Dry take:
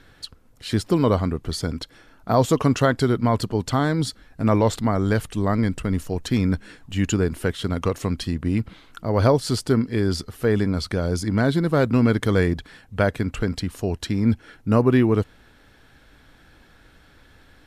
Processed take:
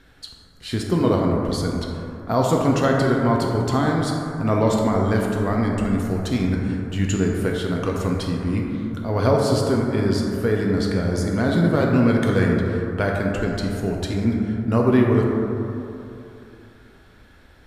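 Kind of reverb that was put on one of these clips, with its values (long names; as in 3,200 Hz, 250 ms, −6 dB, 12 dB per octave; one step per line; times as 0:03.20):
dense smooth reverb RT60 2.9 s, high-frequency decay 0.3×, DRR −1 dB
level −2.5 dB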